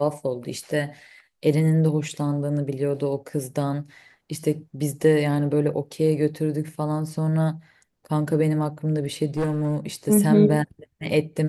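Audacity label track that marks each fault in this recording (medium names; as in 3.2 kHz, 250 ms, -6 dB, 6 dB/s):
9.370000	9.870000	clipped -20 dBFS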